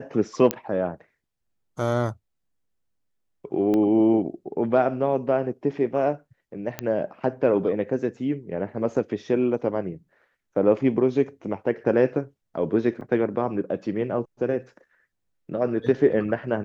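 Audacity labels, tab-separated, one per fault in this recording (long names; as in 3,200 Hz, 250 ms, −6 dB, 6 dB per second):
0.510000	0.510000	click −6 dBFS
3.740000	3.740000	click −15 dBFS
6.790000	6.790000	click −12 dBFS
13.010000	13.010000	drop-out 4.5 ms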